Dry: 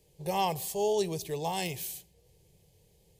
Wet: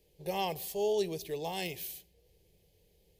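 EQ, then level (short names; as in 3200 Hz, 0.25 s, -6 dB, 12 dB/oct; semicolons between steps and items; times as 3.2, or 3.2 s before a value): ten-band EQ 125 Hz -10 dB, 1000 Hz -8 dB, 8000 Hz -9 dB; 0.0 dB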